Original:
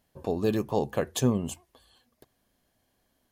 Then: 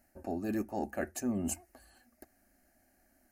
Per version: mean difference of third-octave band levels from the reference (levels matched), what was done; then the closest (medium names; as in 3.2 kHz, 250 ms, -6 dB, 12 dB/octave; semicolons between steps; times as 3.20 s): 5.0 dB: reverse; compression 5:1, threshold -33 dBFS, peak gain reduction 13.5 dB; reverse; static phaser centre 690 Hz, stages 8; trim +5.5 dB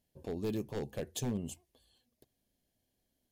3.5 dB: wavefolder -19.5 dBFS; peaking EQ 1.2 kHz -13 dB 1.2 oct; trim -7 dB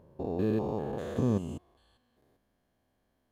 7.0 dB: spectrogram pixelated in time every 200 ms; treble shelf 2.9 kHz -12 dB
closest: second